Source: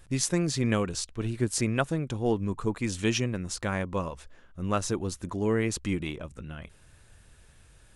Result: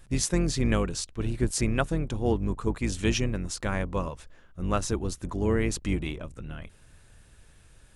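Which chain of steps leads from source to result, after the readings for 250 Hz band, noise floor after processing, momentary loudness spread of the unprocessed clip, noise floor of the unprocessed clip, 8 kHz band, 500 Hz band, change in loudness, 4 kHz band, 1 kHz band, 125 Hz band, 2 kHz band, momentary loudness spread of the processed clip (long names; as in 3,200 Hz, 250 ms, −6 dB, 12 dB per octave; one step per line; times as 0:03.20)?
+0.5 dB, −56 dBFS, 11 LU, −57 dBFS, 0.0 dB, 0.0 dB, +0.5 dB, 0.0 dB, 0.0 dB, +1.5 dB, 0.0 dB, 11 LU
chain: sub-octave generator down 2 octaves, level −1 dB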